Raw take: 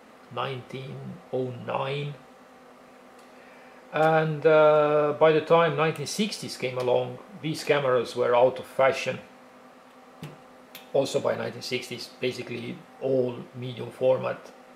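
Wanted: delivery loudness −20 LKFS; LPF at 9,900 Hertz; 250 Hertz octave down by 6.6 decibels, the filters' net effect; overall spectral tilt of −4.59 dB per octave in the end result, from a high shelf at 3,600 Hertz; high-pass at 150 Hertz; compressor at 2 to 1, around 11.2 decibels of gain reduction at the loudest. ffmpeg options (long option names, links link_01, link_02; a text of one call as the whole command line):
ffmpeg -i in.wav -af "highpass=150,lowpass=9900,equalizer=frequency=250:width_type=o:gain=-9,highshelf=frequency=3600:gain=-6.5,acompressor=threshold=-37dB:ratio=2,volume=16.5dB" out.wav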